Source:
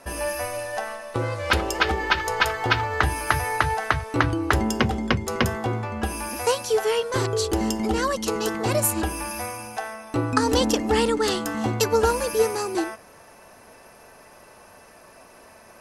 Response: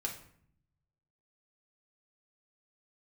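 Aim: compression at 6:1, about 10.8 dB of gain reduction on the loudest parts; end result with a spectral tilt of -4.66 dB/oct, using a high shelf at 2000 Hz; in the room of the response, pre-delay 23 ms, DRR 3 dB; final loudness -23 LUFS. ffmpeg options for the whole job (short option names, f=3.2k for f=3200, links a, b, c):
-filter_complex "[0:a]highshelf=f=2k:g=-3.5,acompressor=threshold=-29dB:ratio=6,asplit=2[a][b];[1:a]atrim=start_sample=2205,adelay=23[c];[b][c]afir=irnorm=-1:irlink=0,volume=-4dB[d];[a][d]amix=inputs=2:normalize=0,volume=8dB"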